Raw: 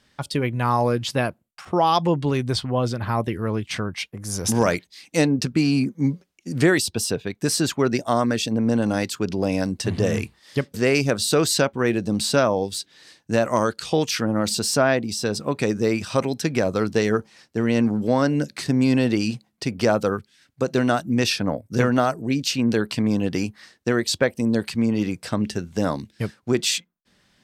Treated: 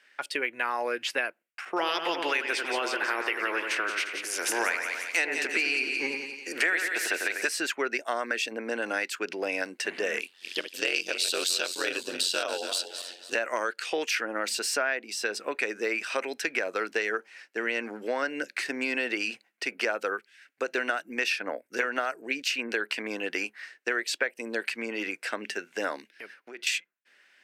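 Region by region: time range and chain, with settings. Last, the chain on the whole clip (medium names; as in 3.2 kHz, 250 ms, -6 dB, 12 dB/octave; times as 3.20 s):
1.76–7.47 s: spectral peaks clipped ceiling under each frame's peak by 15 dB + peaking EQ 350 Hz +3.5 dB 0.4 oct + two-band feedback delay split 2.4 kHz, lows 94 ms, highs 175 ms, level -7 dB
10.20–13.35 s: backward echo that repeats 141 ms, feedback 57%, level -11 dB + ring modulator 45 Hz + resonant high shelf 2.6 kHz +7.5 dB, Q 3
26.08–26.67 s: peaking EQ 7.5 kHz -10 dB 0.26 oct + compression 10:1, threshold -31 dBFS
whole clip: high-pass 350 Hz 24 dB/octave; high-order bell 2 kHz +11.5 dB 1.2 oct; compression 4:1, threshold -20 dBFS; trim -5 dB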